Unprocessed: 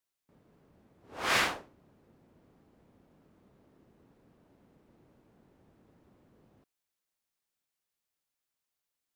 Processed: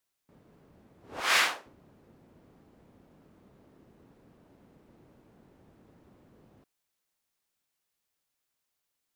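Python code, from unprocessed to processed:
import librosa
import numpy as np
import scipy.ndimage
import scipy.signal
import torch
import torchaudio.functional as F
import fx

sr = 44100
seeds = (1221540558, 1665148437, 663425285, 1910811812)

y = fx.highpass(x, sr, hz=1100.0, slope=6, at=(1.2, 1.66))
y = F.gain(torch.from_numpy(y), 4.5).numpy()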